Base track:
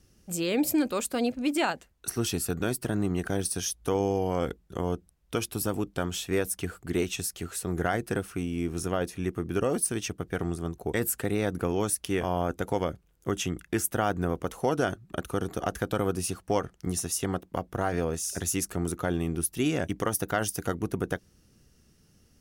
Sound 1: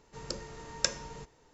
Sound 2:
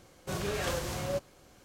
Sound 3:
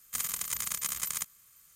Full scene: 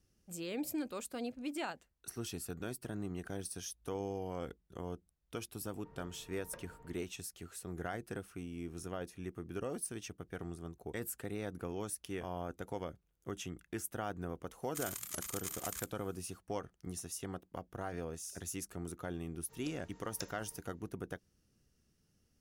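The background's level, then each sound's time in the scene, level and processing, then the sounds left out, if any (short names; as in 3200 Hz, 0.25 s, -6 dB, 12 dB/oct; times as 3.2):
base track -13 dB
5.69 add 1 -13 dB + LPF 1400 Hz
14.62 add 3 -9.5 dB + record warp 78 rpm, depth 160 cents
19.36 add 1 -16.5 dB
not used: 2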